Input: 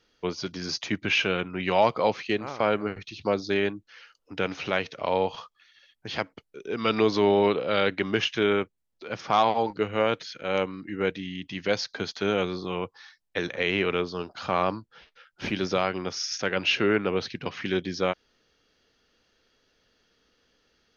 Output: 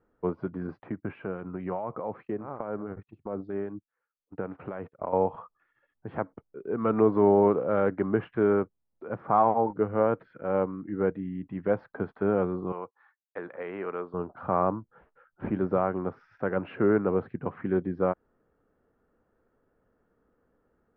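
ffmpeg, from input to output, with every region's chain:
-filter_complex "[0:a]asettb=1/sr,asplit=3[a][b][c];[a]atrim=end=0.674[d];[b]atrim=start=0.67:end=5.13,asetpts=PTS-STARTPTS,afade=t=in:d=0.004:c=qsin,afade=t=out:st=4.456:d=0.004:c=qsin,agate=range=-23dB:threshold=-41dB:ratio=16:release=100:detection=peak,acompressor=threshold=-26dB:ratio=4:attack=3.2:release=140:knee=1:detection=peak,acrossover=split=2400[e][f];[e]aeval=exprs='val(0)*(1-0.5/2+0.5/2*cos(2*PI*4.8*n/s))':c=same[g];[f]aeval=exprs='val(0)*(1-0.5/2-0.5/2*cos(2*PI*4.8*n/s))':c=same[h];[g][h]amix=inputs=2:normalize=0[i];[c]atrim=start=5.126[j];[d][i]acrossfade=d=0.004:c1=hsin:c2=qsin[k];[k][j]acrossfade=d=0.004:c1=qsin:c2=hsin,asettb=1/sr,asplit=3[l][m][n];[l]atrim=end=12.724[o];[m]atrim=start=12.72:end=14.14,asetpts=PTS-STARTPTS,afade=t=in:d=0.004:c=qsin,afade=t=out:st=1.416:d=0.004:c=qsin,highpass=f=940:p=1,agate=range=-33dB:threshold=-50dB:ratio=3:release=100:detection=peak[p];[n]atrim=start=14.136[q];[o][p]acrossfade=d=0.004:c1=hsin:c2=qsin[r];[r][q]acrossfade=d=0.004:c1=qsin:c2=hsin,lowpass=f=1.3k:w=0.5412,lowpass=f=1.3k:w=1.3066,equalizer=f=160:w=0.67:g=2"

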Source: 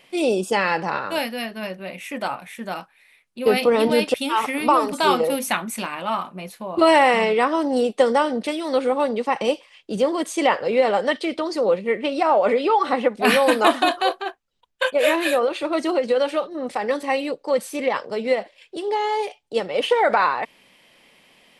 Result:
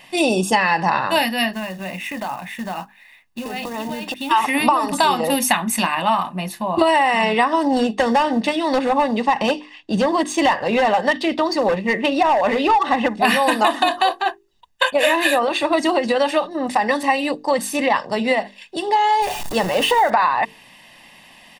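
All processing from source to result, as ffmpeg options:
-filter_complex "[0:a]asettb=1/sr,asplit=3[a][b][c];[a]atrim=end=1.534[d];[b]atrim=start=1.53:end=4.31,asetpts=PTS-STARTPTS,afade=t=in:d=0.004:c=qsin,afade=t=out:st=2.776:d=0.004:c=qsin,equalizer=f=10k:w=0.47:g=-10,acompressor=threshold=-31dB:ratio=6:attack=3.2:release=140:knee=1:detection=peak,acrusher=bits=4:mode=log:mix=0:aa=0.000001[e];[c]atrim=start=4.306[f];[d][e]acrossfade=d=0.004:c1=hsin:c2=qsin[g];[g][f]acrossfade=d=0.004:c1=qsin:c2=hsin,asettb=1/sr,asplit=3[h][i][j];[h]atrim=end=7.674[k];[i]atrim=start=7.67:end=13.21,asetpts=PTS-STARTPTS,afade=t=in:d=0.004:c=qsin,afade=t=out:st=5.536:d=0.004:c=qsin,asoftclip=type=hard:threshold=-14dB,acrusher=bits=8:mode=log:mix=0:aa=0.000001,adynamicsmooth=sensitivity=2.5:basefreq=5.7k[l];[j]atrim=start=13.206[m];[k][l]acrossfade=d=0.004:c1=hsin:c2=qsin[n];[n][m]acrossfade=d=0.004:c1=qsin:c2=hsin,asettb=1/sr,asplit=3[o][p][q];[o]atrim=end=19.224[r];[p]atrim=start=19.22:end=20.1,asetpts=PTS-STARTPTS,afade=t=in:d=0.004:c=qsin,afade=t=out:st=0.876:d=0.004:c=qsin,aeval=exprs='val(0)+0.5*0.0335*sgn(val(0))':c=same,equalizer=f=2.9k:w=0.67:g=-3[s];[q]atrim=start=20.096[t];[r][s]acrossfade=d=0.004:c1=hsin:c2=qsin[u];[u][t]acrossfade=d=0.004:c1=qsin:c2=hsin,bandreject=f=50:t=h:w=6,bandreject=f=100:t=h:w=6,bandreject=f=150:t=h:w=6,bandreject=f=200:t=h:w=6,bandreject=f=250:t=h:w=6,bandreject=f=300:t=h:w=6,bandreject=f=350:t=h:w=6,bandreject=f=400:t=h:w=6,bandreject=f=450:t=h:w=6,aecho=1:1:1.1:0.62,acompressor=threshold=-20dB:ratio=10,volume=7.5dB"

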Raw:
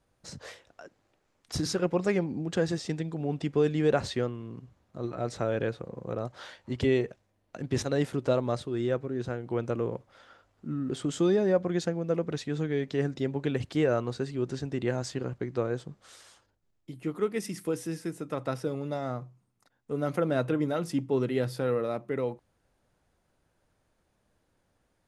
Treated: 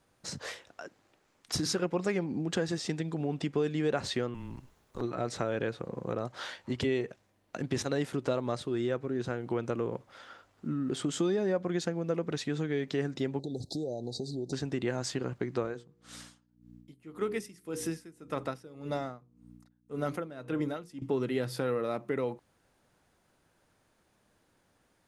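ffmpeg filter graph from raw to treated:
-filter_complex "[0:a]asettb=1/sr,asplit=3[a][b][c];[a]atrim=end=4.344[d];[b]atrim=start=4.34:end=5.02,asetpts=PTS-STARTPTS,afade=t=in:d=0.004:c=qsin,afade=t=out:st=0.676:d=0.004:c=qsin,highshelf=f=9.3k:g=10.5,afreqshift=-130,aeval=exprs='0.0376*(abs(mod(val(0)/0.0376+3,4)-2)-1)':c=same[e];[c]atrim=start=5.016[f];[d][e]acrossfade=d=0.004:c1=hsin:c2=qsin[g];[g][f]acrossfade=d=0.004:c1=qsin:c2=hsin,asettb=1/sr,asplit=3[h][i][j];[h]atrim=end=13.394[k];[i]atrim=start=13.39:end=14.53,asetpts=PTS-STARTPTS,afade=t=in:d=0.004:c=qsin,afade=t=out:st=1.136:d=0.004:c=qsin,acompressor=threshold=-35dB:ratio=4:attack=3.2:release=140:knee=1:detection=peak,asuperstop=centerf=1800:order=20:qfactor=0.6,equalizer=f=4k:t=o:w=0.65:g=5[l];[j]atrim=start=14.526[m];[k][l]acrossfade=d=0.004:c1=hsin:c2=qsin[n];[n][m]acrossfade=d=0.004:c1=qsin:c2=hsin,asettb=1/sr,asplit=3[o][p][q];[o]atrim=end=15.634[r];[p]atrim=start=15.63:end=21.02,asetpts=PTS-STARTPTS,afade=t=in:d=0.004:c=qsin,afade=t=out:st=5.386:d=0.004:c=qsin,aeval=exprs='val(0)+0.00631*(sin(2*PI*60*n/s)+sin(2*PI*2*60*n/s)/2+sin(2*PI*3*60*n/s)/3+sin(2*PI*4*60*n/s)/4+sin(2*PI*5*60*n/s)/5)':c=same,bandreject=f=59.47:t=h:w=4,bandreject=f=118.94:t=h:w=4,bandreject=f=178.41:t=h:w=4,bandreject=f=237.88:t=h:w=4,bandreject=f=297.35:t=h:w=4,bandreject=f=356.82:t=h:w=4,bandreject=f=416.29:t=h:w=4,bandreject=f=475.76:t=h:w=4,aeval=exprs='val(0)*pow(10,-21*(0.5-0.5*cos(2*PI*1.8*n/s))/20)':c=same[s];[q]atrim=start=21.016[t];[r][s]acrossfade=d=0.004:c1=hsin:c2=qsin[u];[u][t]acrossfade=d=0.004:c1=qsin:c2=hsin,equalizer=f=570:w=1.5:g=-3,acompressor=threshold=-34dB:ratio=2.5,lowshelf=f=100:g=-11.5,volume=5.5dB"

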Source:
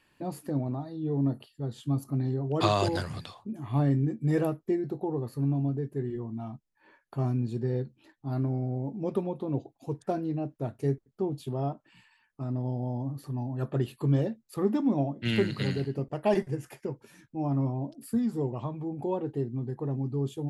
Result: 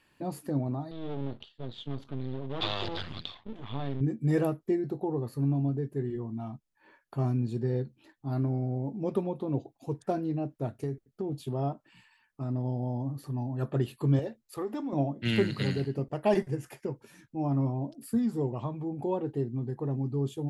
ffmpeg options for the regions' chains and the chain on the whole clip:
-filter_complex "[0:a]asettb=1/sr,asplit=3[a][b][c];[a]atrim=end=0.914[d];[b]atrim=start=0.91:end=4.01,asetpts=PTS-STARTPTS,afade=t=in:d=0.004:c=qsin,afade=t=out:st=3.096:d=0.004:c=qsin,aeval=exprs='max(val(0),0)':c=same,acompressor=threshold=-32dB:ratio=2:attack=3.2:release=140:knee=1:detection=peak,lowpass=f=3.5k:t=q:w=4.9[e];[c]atrim=start=4.006[f];[d][e]acrossfade=d=0.004:c1=hsin:c2=qsin[g];[g][f]acrossfade=d=0.004:c1=qsin:c2=hsin,asettb=1/sr,asplit=3[h][i][j];[h]atrim=end=10.704[k];[i]atrim=start=10.7:end=11.36,asetpts=PTS-STARTPTS,afade=t=in:d=0.004:c=qsin,afade=t=out:st=0.656:d=0.004:c=qsin,equalizer=f=1k:w=4.5:g=-7.5,acompressor=threshold=-28dB:ratio=6:attack=3.2:release=140:knee=1:detection=peak[l];[j]atrim=start=11.356[m];[k][l]acrossfade=d=0.004:c1=hsin:c2=qsin[n];[n][m]acrossfade=d=0.004:c1=qsin:c2=hsin,asettb=1/sr,asplit=3[o][p][q];[o]atrim=end=14.194[r];[p]atrim=start=14.19:end=14.93,asetpts=PTS-STARTPTS,afade=t=in:d=0.004:c=qsin,afade=t=out:st=0.736:d=0.004:c=qsin,acompressor=threshold=-26dB:ratio=3:attack=3.2:release=140:knee=1:detection=peak,equalizer=f=190:t=o:w=0.81:g=-14.5[s];[q]atrim=start=14.926[t];[r][s]acrossfade=d=0.004:c1=hsin:c2=qsin[u];[u][t]acrossfade=d=0.004:c1=qsin:c2=hsin"

